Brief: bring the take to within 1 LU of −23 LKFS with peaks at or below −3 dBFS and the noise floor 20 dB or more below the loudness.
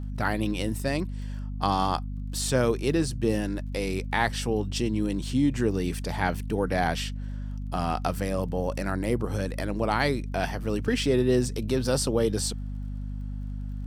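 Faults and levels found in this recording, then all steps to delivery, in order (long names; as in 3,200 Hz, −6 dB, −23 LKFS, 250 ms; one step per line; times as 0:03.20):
crackle rate 23 per second; mains hum 50 Hz; hum harmonics up to 250 Hz; level of the hum −31 dBFS; integrated loudness −28.0 LKFS; sample peak −9.0 dBFS; target loudness −23.0 LKFS
→ click removal
mains-hum notches 50/100/150/200/250 Hz
level +5 dB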